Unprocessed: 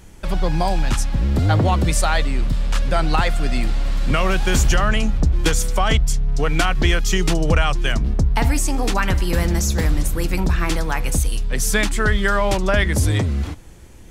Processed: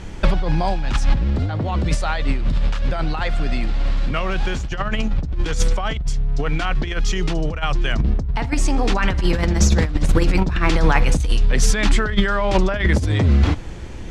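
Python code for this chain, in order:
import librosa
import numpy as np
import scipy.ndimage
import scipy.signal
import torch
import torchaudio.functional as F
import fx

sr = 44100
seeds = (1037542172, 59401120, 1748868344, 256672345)

y = scipy.signal.sosfilt(scipy.signal.butter(2, 4700.0, 'lowpass', fs=sr, output='sos'), x)
y = fx.over_compress(y, sr, threshold_db=-21.0, ratio=-0.5)
y = F.gain(torch.from_numpy(y), 5.5).numpy()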